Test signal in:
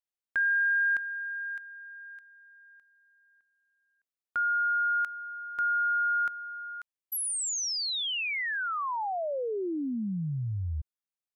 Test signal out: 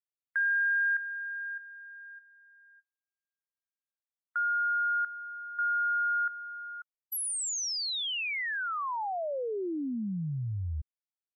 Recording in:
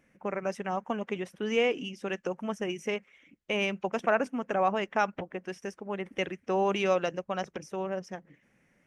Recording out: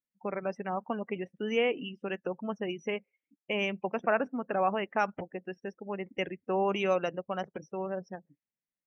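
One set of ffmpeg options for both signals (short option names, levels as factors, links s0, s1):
-af "afftdn=nr=34:nf=-41,volume=0.841"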